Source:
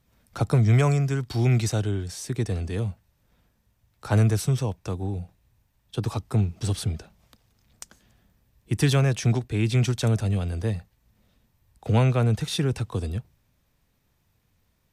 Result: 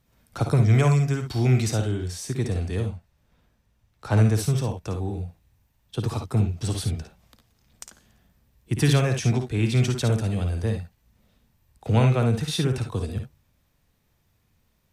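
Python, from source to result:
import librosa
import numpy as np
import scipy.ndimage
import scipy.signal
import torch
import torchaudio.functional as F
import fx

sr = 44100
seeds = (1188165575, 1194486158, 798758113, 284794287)

y = fx.high_shelf(x, sr, hz=8700.0, db=-8.5, at=(2.83, 4.34))
y = fx.room_early_taps(y, sr, ms=(55, 68), db=(-7.5, -10.0))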